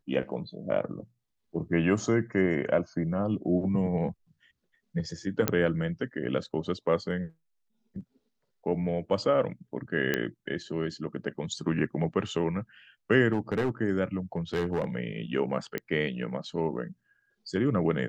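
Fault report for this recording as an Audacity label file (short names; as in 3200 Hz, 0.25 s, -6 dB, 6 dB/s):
5.480000	5.480000	pop -7 dBFS
10.140000	10.140000	pop -12 dBFS
13.330000	13.700000	clipped -22.5 dBFS
14.370000	14.850000	clipped -23.5 dBFS
15.780000	15.780000	pop -18 dBFS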